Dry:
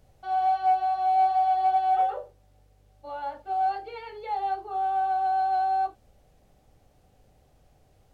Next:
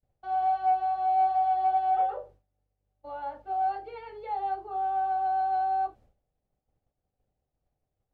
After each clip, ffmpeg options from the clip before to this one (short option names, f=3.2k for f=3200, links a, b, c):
-af "agate=range=-33dB:threshold=-47dB:ratio=3:detection=peak,highshelf=f=3k:g=-12,volume=-1.5dB"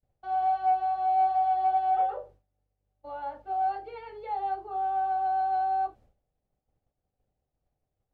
-af anull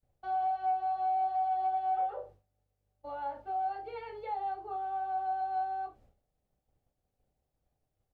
-filter_complex "[0:a]acompressor=threshold=-36dB:ratio=2,asplit=2[a][b];[b]adelay=32,volume=-10.5dB[c];[a][c]amix=inputs=2:normalize=0"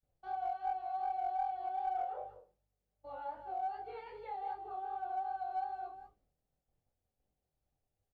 -filter_complex "[0:a]aecho=1:1:188:0.299,flanger=delay=19:depth=7.5:speed=2.6,asplit=2[a][b];[b]aeval=exprs='clip(val(0),-1,0.0282)':c=same,volume=-8.5dB[c];[a][c]amix=inputs=2:normalize=0,volume=-5.5dB"